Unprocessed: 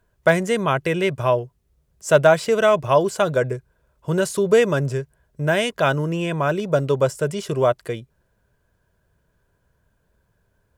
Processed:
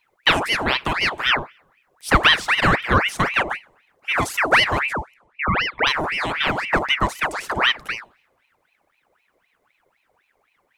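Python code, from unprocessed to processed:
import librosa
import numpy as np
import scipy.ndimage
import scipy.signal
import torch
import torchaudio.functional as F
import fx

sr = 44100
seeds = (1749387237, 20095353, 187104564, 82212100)

y = fx.envelope_sharpen(x, sr, power=3.0, at=(4.93, 5.87))
y = fx.rev_double_slope(y, sr, seeds[0], early_s=0.59, late_s=2.1, knee_db=-26, drr_db=18.0)
y = fx.ring_lfo(y, sr, carrier_hz=1500.0, swing_pct=70, hz=3.9)
y = F.gain(torch.from_numpy(y), 2.0).numpy()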